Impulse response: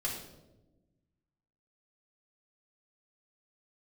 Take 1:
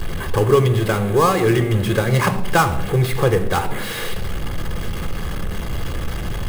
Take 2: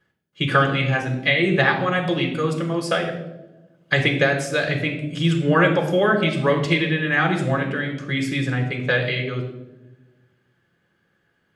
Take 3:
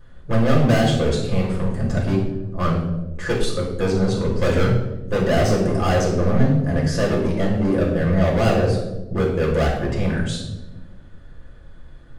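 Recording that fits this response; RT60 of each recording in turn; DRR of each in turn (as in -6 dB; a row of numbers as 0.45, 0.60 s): 3; 1.1, 1.1, 1.1 s; 7.5, 2.0, -4.5 dB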